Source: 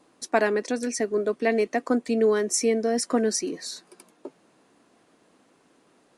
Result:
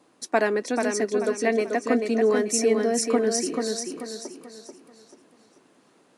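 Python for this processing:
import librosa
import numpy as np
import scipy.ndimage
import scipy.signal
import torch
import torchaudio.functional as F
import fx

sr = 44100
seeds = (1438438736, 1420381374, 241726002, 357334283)

y = scipy.signal.sosfilt(scipy.signal.butter(2, 71.0, 'highpass', fs=sr, output='sos'), x)
y = fx.echo_feedback(y, sr, ms=437, feedback_pct=37, wet_db=-5.0)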